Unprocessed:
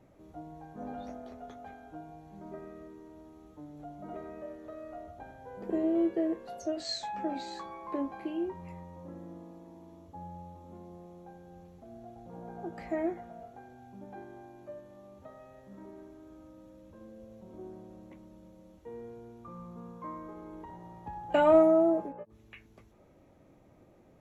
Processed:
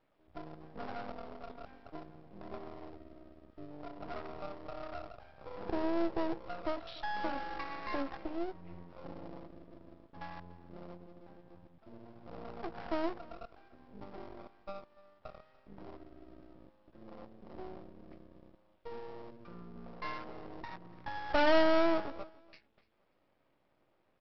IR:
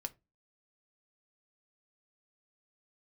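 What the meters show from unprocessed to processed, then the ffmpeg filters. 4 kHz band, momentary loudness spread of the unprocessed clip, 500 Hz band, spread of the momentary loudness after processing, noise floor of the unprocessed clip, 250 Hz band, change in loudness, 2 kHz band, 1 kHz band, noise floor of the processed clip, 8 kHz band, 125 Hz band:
-0.5 dB, 22 LU, -5.5 dB, 21 LU, -60 dBFS, -6.0 dB, -6.0 dB, +5.5 dB, -1.0 dB, -74 dBFS, n/a, -3.5 dB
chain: -filter_complex "[0:a]afwtdn=0.0112,asplit=2[a][b];[b]highpass=f=720:p=1,volume=12dB,asoftclip=type=tanh:threshold=-12dB[c];[a][c]amix=inputs=2:normalize=0,lowpass=f=2.8k:p=1,volume=-6dB,asplit=2[d][e];[e]acompressor=threshold=-44dB:ratio=6,volume=3dB[f];[d][f]amix=inputs=2:normalize=0,aresample=8000,aresample=44100,aresample=11025,aeval=exprs='max(val(0),0)':c=same,aresample=44100,aemphasis=mode=production:type=75kf,aecho=1:1:292|584:0.0794|0.0175,volume=-3.5dB"

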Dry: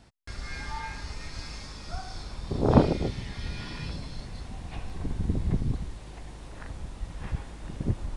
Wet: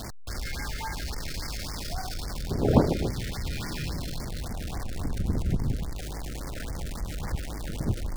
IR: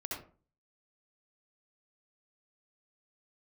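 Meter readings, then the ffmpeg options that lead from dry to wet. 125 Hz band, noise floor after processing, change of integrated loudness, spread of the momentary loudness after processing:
+0.5 dB, -35 dBFS, +0.5 dB, 10 LU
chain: -af "aeval=exprs='val(0)+0.5*0.0316*sgn(val(0))':c=same,afftfilt=real='re*(1-between(b*sr/1024,880*pow(3300/880,0.5+0.5*sin(2*PI*3.6*pts/sr))/1.41,880*pow(3300/880,0.5+0.5*sin(2*PI*3.6*pts/sr))*1.41))':imag='im*(1-between(b*sr/1024,880*pow(3300/880,0.5+0.5*sin(2*PI*3.6*pts/sr))/1.41,880*pow(3300/880,0.5+0.5*sin(2*PI*3.6*pts/sr))*1.41))':win_size=1024:overlap=0.75,volume=-1.5dB"

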